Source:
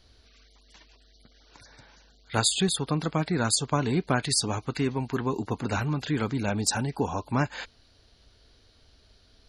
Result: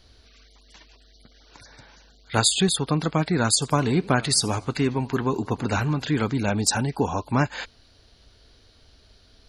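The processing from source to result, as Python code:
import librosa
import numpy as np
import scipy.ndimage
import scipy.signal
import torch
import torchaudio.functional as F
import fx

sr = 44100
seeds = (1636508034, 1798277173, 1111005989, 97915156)

y = fx.echo_warbled(x, sr, ms=83, feedback_pct=43, rate_hz=2.8, cents=159, wet_db=-22, at=(3.53, 6.14))
y = F.gain(torch.from_numpy(y), 4.0).numpy()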